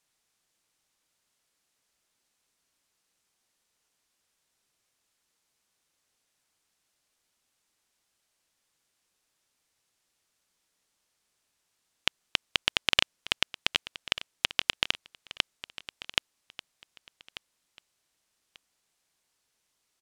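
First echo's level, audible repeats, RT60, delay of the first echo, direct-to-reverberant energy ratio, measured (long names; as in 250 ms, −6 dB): −16.0 dB, 2, no reverb audible, 1,190 ms, no reverb audible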